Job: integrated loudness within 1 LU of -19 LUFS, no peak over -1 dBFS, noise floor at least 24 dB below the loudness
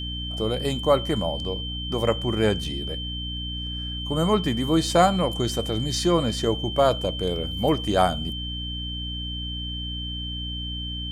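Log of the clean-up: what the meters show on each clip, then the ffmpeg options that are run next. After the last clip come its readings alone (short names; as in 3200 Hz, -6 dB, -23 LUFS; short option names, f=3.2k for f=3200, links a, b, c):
hum 60 Hz; harmonics up to 300 Hz; hum level -31 dBFS; steady tone 3100 Hz; tone level -32 dBFS; loudness -25.0 LUFS; peak -5.5 dBFS; loudness target -19.0 LUFS
-> -af "bandreject=f=60:t=h:w=4,bandreject=f=120:t=h:w=4,bandreject=f=180:t=h:w=4,bandreject=f=240:t=h:w=4,bandreject=f=300:t=h:w=4"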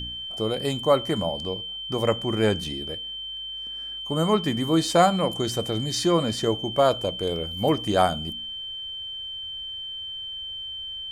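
hum none; steady tone 3100 Hz; tone level -32 dBFS
-> -af "bandreject=f=3.1k:w=30"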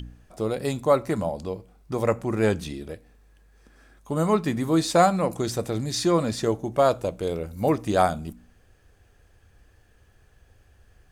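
steady tone none; loudness -24.5 LUFS; peak -5.5 dBFS; loudness target -19.0 LUFS
-> -af "volume=5.5dB,alimiter=limit=-1dB:level=0:latency=1"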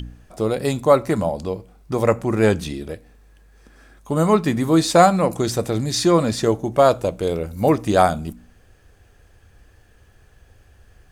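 loudness -19.0 LUFS; peak -1.0 dBFS; noise floor -53 dBFS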